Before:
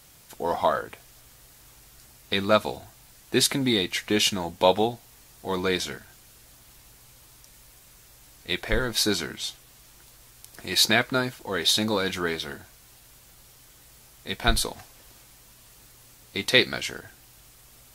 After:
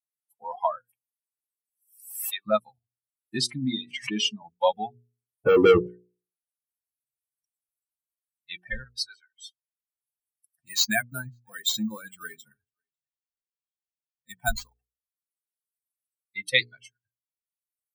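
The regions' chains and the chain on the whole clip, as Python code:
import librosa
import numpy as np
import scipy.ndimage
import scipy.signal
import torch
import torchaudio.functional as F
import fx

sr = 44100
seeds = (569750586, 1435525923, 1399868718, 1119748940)

y = fx.chain(x, sr, fx.highpass(hz=540.0, slope=12),
    fx.pre_swell(db_per_s=46.0), at=(0.8, 2.46))
y = fx.chain(y, sr, fx.bandpass_edges(low_hz=110.0, high_hz=7300.0),
    fx.pre_swell(db_per_s=67.0), at=(3.38, 4.42))
y = fx.chain(y, sr, fx.lowpass_res(hz=470.0, q=3.8),
    fx.leveller(passes=5), at=(5.46, 5.87))
y = fx.chain(y, sr, fx.highpass(hz=880.0, slope=12),
    fx.high_shelf(hz=7000.0, db=-12.0),
    fx.band_widen(depth_pct=100), at=(8.84, 9.36))
y = fx.chain(y, sr, fx.echo_single(ms=546, db=-20.0),
    fx.resample_bad(factor=4, down='none', up='hold'), at=(10.61, 14.77))
y = fx.chain(y, sr, fx.highpass(hz=51.0, slope=12),
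    fx.band_widen(depth_pct=100), at=(16.61, 17.03))
y = fx.bin_expand(y, sr, power=3.0)
y = fx.hum_notches(y, sr, base_hz=60, count=8)
y = fx.band_squash(y, sr, depth_pct=40)
y = y * 10.0 ** (4.0 / 20.0)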